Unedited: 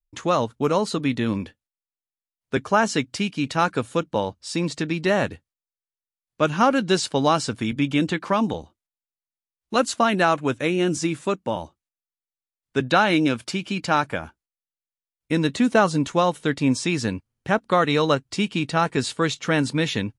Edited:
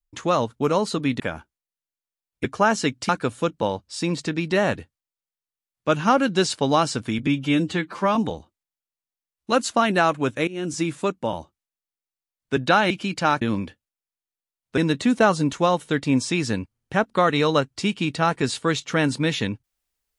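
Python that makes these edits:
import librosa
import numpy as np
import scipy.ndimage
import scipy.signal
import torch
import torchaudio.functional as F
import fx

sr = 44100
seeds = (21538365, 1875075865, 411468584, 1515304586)

y = fx.edit(x, sr, fx.swap(start_s=1.2, length_s=1.36, other_s=14.08, other_length_s=1.24),
    fx.cut(start_s=3.21, length_s=0.41),
    fx.stretch_span(start_s=7.8, length_s=0.59, factor=1.5),
    fx.fade_in_from(start_s=10.71, length_s=0.37, floor_db=-18.5),
    fx.cut(start_s=13.14, length_s=0.43), tone=tone)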